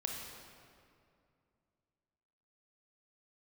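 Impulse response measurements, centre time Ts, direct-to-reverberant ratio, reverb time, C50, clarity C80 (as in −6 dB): 86 ms, 0.0 dB, 2.4 s, 1.5 dB, 3.0 dB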